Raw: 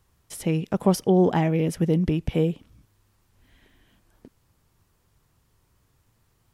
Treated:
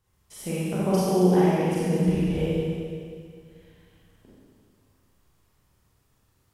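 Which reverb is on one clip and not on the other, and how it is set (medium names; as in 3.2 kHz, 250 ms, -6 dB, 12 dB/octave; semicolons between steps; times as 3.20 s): Schroeder reverb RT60 2.2 s, combs from 30 ms, DRR -9 dB; trim -9.5 dB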